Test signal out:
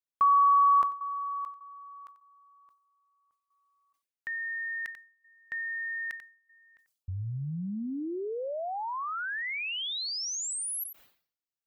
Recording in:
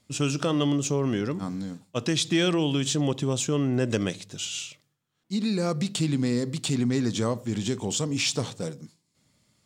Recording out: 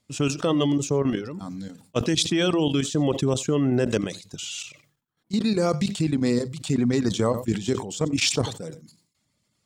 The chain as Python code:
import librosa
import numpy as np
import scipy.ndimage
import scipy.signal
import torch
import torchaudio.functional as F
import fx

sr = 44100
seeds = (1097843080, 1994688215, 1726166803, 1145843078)

p1 = fx.dereverb_blind(x, sr, rt60_s=0.68)
p2 = fx.dynamic_eq(p1, sr, hz=430.0, q=0.76, threshold_db=-34.0, ratio=4.0, max_db=3)
p3 = fx.level_steps(p2, sr, step_db=13)
p4 = p3 + fx.echo_single(p3, sr, ms=91, db=-23.5, dry=0)
p5 = fx.sustainer(p4, sr, db_per_s=120.0)
y = p5 * 10.0 ** (5.0 / 20.0)